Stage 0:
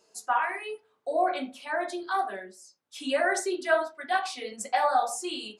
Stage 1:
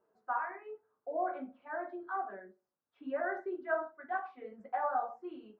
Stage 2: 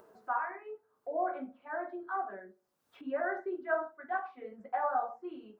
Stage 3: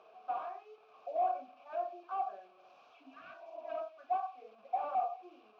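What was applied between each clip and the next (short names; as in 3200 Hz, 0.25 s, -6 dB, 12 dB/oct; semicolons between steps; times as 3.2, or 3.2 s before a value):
Chebyshev low-pass 1500 Hz, order 3; gain -8 dB
upward compressor, threshold -49 dBFS; gain +1.5 dB
delta modulation 32 kbps, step -48.5 dBFS; vowel filter a; spectral repair 3.03–3.77, 320–1100 Hz both; gain +5.5 dB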